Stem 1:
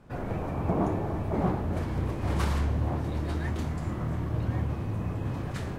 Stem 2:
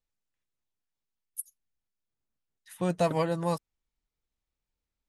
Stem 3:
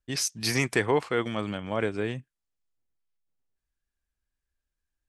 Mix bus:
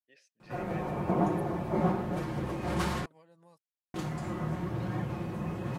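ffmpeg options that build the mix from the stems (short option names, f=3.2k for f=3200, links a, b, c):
-filter_complex "[0:a]aecho=1:1:5.6:0.62,flanger=delay=6.3:depth=7.5:regen=-43:speed=1.1:shape=sinusoidal,adelay=400,volume=3dB,asplit=3[a][b][c];[a]atrim=end=3.06,asetpts=PTS-STARTPTS,afade=t=out:st=3.056:d=0.004:c=hsin[d];[b]atrim=start=3.06:end=3.94,asetpts=PTS-STARTPTS,volume=0[e];[c]atrim=start=3.94,asetpts=PTS-STARTPTS,afade=t=in:d=0.004:c=hsin[f];[d][e][f]concat=n=3:v=0:a=1[g];[1:a]acompressor=threshold=-38dB:ratio=4,volume=-19.5dB[h];[2:a]asplit=3[i][j][k];[i]bandpass=f=530:t=q:w=8,volume=0dB[l];[j]bandpass=f=1.84k:t=q:w=8,volume=-6dB[m];[k]bandpass=f=2.48k:t=q:w=8,volume=-9dB[n];[l][m][n]amix=inputs=3:normalize=0,volume=-15dB[o];[g][h][o]amix=inputs=3:normalize=0,highpass=f=140:p=1"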